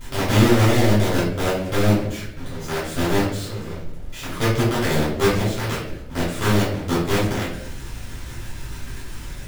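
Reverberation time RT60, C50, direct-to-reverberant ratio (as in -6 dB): 0.75 s, 2.0 dB, -11.5 dB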